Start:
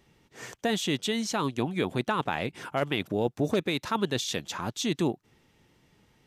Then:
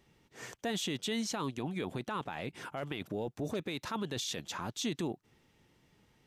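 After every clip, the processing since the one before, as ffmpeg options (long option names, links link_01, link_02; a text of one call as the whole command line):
ffmpeg -i in.wav -af "alimiter=limit=-22.5dB:level=0:latency=1:release=12,volume=-4dB" out.wav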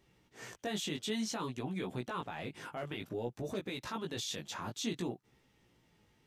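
ffmpeg -i in.wav -af "flanger=delay=15.5:depth=3.9:speed=0.56,volume=1dB" out.wav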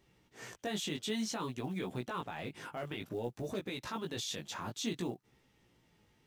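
ffmpeg -i in.wav -af "acrusher=bits=8:mode=log:mix=0:aa=0.000001" out.wav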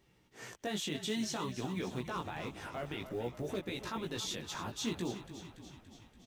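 ffmpeg -i in.wav -filter_complex "[0:a]asplit=9[link_01][link_02][link_03][link_04][link_05][link_06][link_07][link_08][link_09];[link_02]adelay=286,afreqshift=-30,volume=-11.5dB[link_10];[link_03]adelay=572,afreqshift=-60,volume=-15.5dB[link_11];[link_04]adelay=858,afreqshift=-90,volume=-19.5dB[link_12];[link_05]adelay=1144,afreqshift=-120,volume=-23.5dB[link_13];[link_06]adelay=1430,afreqshift=-150,volume=-27.6dB[link_14];[link_07]adelay=1716,afreqshift=-180,volume=-31.6dB[link_15];[link_08]adelay=2002,afreqshift=-210,volume=-35.6dB[link_16];[link_09]adelay=2288,afreqshift=-240,volume=-39.6dB[link_17];[link_01][link_10][link_11][link_12][link_13][link_14][link_15][link_16][link_17]amix=inputs=9:normalize=0" out.wav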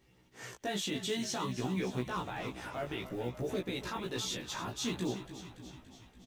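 ffmpeg -i in.wav -filter_complex "[0:a]asplit=2[link_01][link_02];[link_02]adelay=16,volume=-2.5dB[link_03];[link_01][link_03]amix=inputs=2:normalize=0" out.wav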